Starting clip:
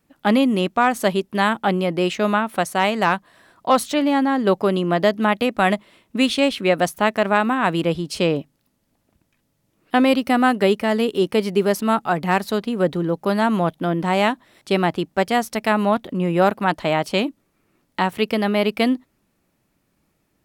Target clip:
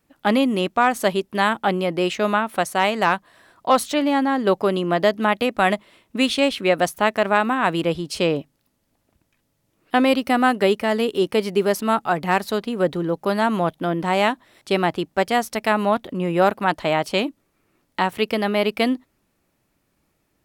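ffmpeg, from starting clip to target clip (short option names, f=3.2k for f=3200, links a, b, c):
-af "equalizer=f=190:w=1.3:g=-3.5"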